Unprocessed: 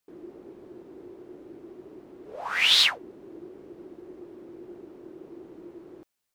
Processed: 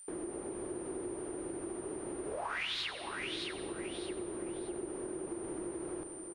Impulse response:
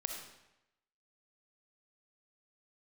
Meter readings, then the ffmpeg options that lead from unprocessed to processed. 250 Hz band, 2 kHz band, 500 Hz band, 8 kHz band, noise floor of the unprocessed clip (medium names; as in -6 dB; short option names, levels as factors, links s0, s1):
+3.5 dB, -11.5 dB, +3.5 dB, -3.0 dB, -81 dBFS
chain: -filter_complex "[0:a]aemphasis=mode=reproduction:type=75fm,acompressor=threshold=0.00708:ratio=3,equalizer=f=210:t=o:w=2.6:g=-9,aecho=1:1:616|1232|1848:0.355|0.0852|0.0204,aeval=exprs='val(0)+0.000708*sin(2*PI*9100*n/s)':c=same,asplit=2[s0][s1];[1:a]atrim=start_sample=2205,adelay=91[s2];[s1][s2]afir=irnorm=-1:irlink=0,volume=0.251[s3];[s0][s3]amix=inputs=2:normalize=0,acrossover=split=220[s4][s5];[s5]acompressor=threshold=0.00251:ratio=3[s6];[s4][s6]amix=inputs=2:normalize=0,volume=4.73"